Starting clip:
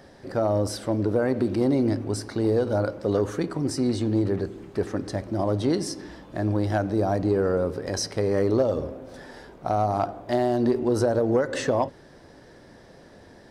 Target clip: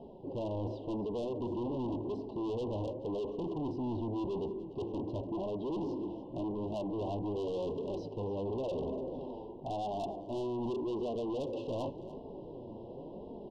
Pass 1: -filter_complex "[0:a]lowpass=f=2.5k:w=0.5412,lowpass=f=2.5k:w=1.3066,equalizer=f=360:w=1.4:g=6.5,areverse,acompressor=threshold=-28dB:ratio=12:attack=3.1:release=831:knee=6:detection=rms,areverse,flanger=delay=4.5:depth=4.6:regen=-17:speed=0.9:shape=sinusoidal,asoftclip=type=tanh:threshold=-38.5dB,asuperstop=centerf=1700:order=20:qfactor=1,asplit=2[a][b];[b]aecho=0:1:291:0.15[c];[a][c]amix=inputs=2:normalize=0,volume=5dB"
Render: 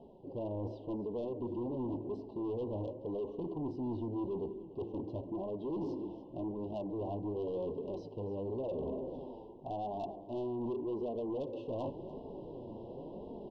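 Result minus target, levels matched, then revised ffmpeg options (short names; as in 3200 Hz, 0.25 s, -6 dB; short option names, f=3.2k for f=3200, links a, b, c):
compressor: peak gain reduction +6.5 dB
-filter_complex "[0:a]lowpass=f=2.5k:w=0.5412,lowpass=f=2.5k:w=1.3066,equalizer=f=360:w=1.4:g=6.5,areverse,acompressor=threshold=-21dB:ratio=12:attack=3.1:release=831:knee=6:detection=rms,areverse,flanger=delay=4.5:depth=4.6:regen=-17:speed=0.9:shape=sinusoidal,asoftclip=type=tanh:threshold=-38.5dB,asuperstop=centerf=1700:order=20:qfactor=1,asplit=2[a][b];[b]aecho=0:1:291:0.15[c];[a][c]amix=inputs=2:normalize=0,volume=5dB"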